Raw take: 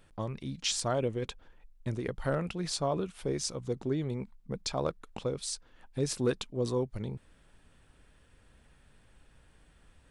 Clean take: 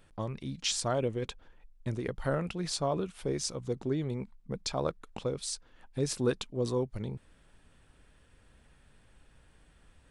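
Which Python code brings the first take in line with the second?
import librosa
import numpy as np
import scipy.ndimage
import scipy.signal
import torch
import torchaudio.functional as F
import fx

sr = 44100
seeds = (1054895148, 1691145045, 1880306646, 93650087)

y = fx.fix_declip(x, sr, threshold_db=-19.5)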